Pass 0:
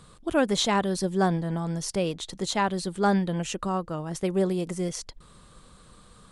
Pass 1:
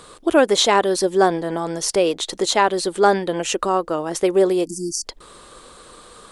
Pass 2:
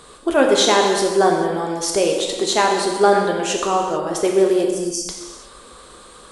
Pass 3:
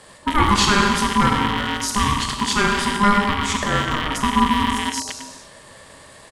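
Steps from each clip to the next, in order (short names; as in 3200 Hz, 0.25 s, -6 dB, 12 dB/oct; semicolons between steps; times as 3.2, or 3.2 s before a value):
spectral delete 4.66–5.04, 350–4500 Hz; in parallel at -1 dB: compressor, threshold -31 dBFS, peak gain reduction 13 dB; on the sum: resonant low shelf 250 Hz -11.5 dB, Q 1.5; gain +6 dB
non-linear reverb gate 0.48 s falling, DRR 0.5 dB; gain -1.5 dB
rattling part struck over -34 dBFS, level -13 dBFS; speakerphone echo 0.1 s, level -8 dB; ring modulator 610 Hz; gain +1 dB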